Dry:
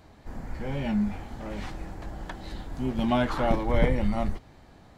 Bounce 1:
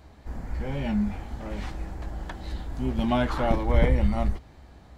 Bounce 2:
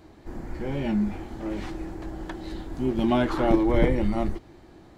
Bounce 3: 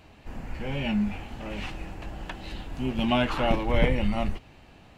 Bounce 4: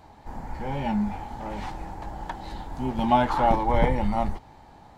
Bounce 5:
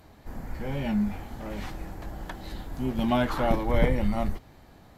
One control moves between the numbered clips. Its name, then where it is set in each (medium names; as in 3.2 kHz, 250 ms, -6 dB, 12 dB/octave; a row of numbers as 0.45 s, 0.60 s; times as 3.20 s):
peaking EQ, frequency: 62 Hz, 340 Hz, 2.7 kHz, 870 Hz, 13 kHz